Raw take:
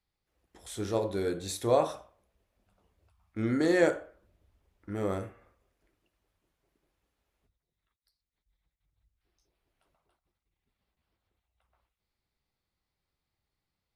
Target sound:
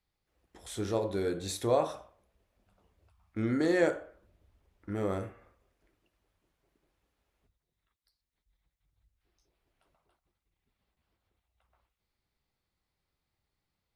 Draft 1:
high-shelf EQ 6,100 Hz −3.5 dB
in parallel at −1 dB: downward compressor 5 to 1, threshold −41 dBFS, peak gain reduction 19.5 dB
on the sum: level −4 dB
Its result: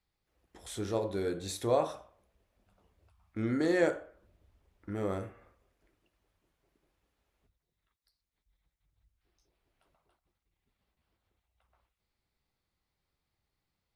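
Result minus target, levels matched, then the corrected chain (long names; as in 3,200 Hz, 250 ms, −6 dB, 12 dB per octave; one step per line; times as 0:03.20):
downward compressor: peak gain reduction +6.5 dB
high-shelf EQ 6,100 Hz −3.5 dB
in parallel at −1 dB: downward compressor 5 to 1, threshold −33 dBFS, peak gain reduction 13 dB
on the sum: level −4 dB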